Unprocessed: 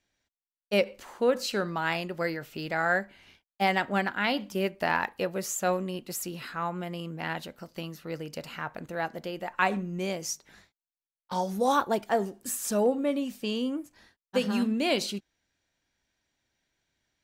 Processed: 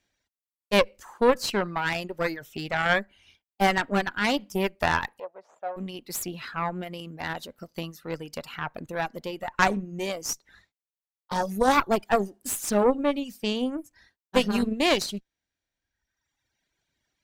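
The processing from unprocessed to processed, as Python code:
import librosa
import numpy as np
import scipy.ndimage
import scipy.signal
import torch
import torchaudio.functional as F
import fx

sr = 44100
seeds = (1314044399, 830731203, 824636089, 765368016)

y = fx.dereverb_blind(x, sr, rt60_s=1.4)
y = fx.cheby_harmonics(y, sr, harmonics=(3, 4, 8), levels_db=(-20, -17, -30), full_scale_db=-9.0)
y = fx.ladder_bandpass(y, sr, hz=770.0, resonance_pct=50, at=(5.18, 5.76), fade=0.02)
y = y * 10.0 ** (6.0 / 20.0)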